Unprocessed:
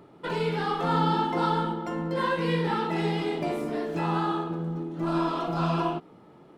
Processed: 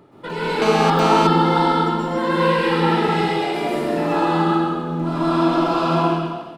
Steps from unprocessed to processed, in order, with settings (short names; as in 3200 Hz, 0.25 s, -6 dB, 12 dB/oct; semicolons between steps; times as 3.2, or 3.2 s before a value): 3.08–3.54 HPF 500 Hz; echo 0.129 s -7.5 dB; plate-style reverb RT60 1.3 s, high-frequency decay 1×, pre-delay 0.11 s, DRR -7 dB; 0.62–1.27 GSM buzz -22 dBFS; gain +1.5 dB